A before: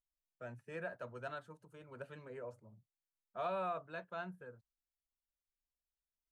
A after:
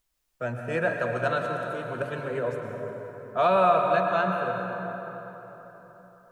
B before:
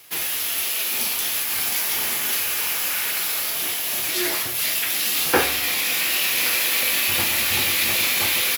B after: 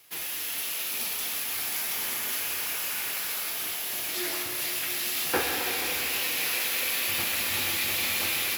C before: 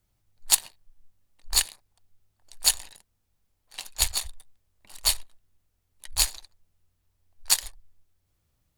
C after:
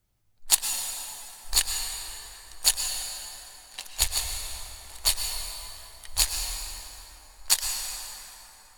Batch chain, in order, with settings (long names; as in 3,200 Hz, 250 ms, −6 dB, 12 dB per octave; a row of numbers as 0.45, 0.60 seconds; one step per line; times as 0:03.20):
dense smooth reverb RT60 4.1 s, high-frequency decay 0.55×, pre-delay 95 ms, DRR 2 dB
loudness normalisation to −27 LKFS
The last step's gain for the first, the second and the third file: +16.5, −9.0, −0.5 decibels